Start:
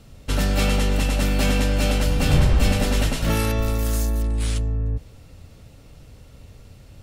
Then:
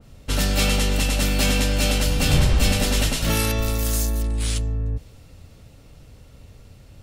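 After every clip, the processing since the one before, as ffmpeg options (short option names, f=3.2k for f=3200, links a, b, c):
-af "adynamicequalizer=threshold=0.00794:dfrequency=2400:dqfactor=0.7:tfrequency=2400:tqfactor=0.7:attack=5:release=100:ratio=0.375:range=3.5:mode=boostabove:tftype=highshelf,volume=-1dB"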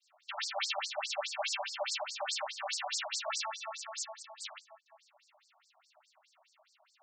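-af "highpass=f=480:t=q:w=5,afftfilt=real='re*between(b*sr/1024,800*pow(6200/800,0.5+0.5*sin(2*PI*4.8*pts/sr))/1.41,800*pow(6200/800,0.5+0.5*sin(2*PI*4.8*pts/sr))*1.41)':imag='im*between(b*sr/1024,800*pow(6200/800,0.5+0.5*sin(2*PI*4.8*pts/sr))/1.41,800*pow(6200/800,0.5+0.5*sin(2*PI*4.8*pts/sr))*1.41)':win_size=1024:overlap=0.75,volume=-4.5dB"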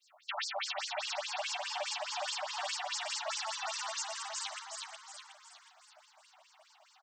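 -filter_complex "[0:a]asplit=2[a][b];[b]asplit=6[c][d][e][f][g][h];[c]adelay=366,afreqshift=130,volume=-5.5dB[i];[d]adelay=732,afreqshift=260,volume=-12.2dB[j];[e]adelay=1098,afreqshift=390,volume=-19dB[k];[f]adelay=1464,afreqshift=520,volume=-25.7dB[l];[g]adelay=1830,afreqshift=650,volume=-32.5dB[m];[h]adelay=2196,afreqshift=780,volume=-39.2dB[n];[i][j][k][l][m][n]amix=inputs=6:normalize=0[o];[a][o]amix=inputs=2:normalize=0,acompressor=threshold=-39dB:ratio=6,volume=4.5dB"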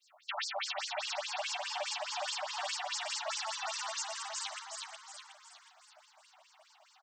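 -af anull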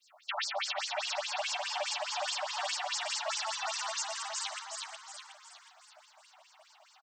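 -af "aecho=1:1:136:0.0794,volume=2.5dB"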